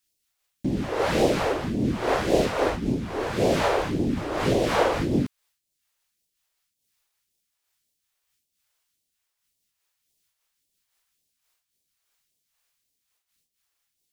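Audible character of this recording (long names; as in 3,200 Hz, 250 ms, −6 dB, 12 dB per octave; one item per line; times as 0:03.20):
phaser sweep stages 2, 1.8 Hz, lowest notch 170–1,300 Hz
amplitude modulation by smooth noise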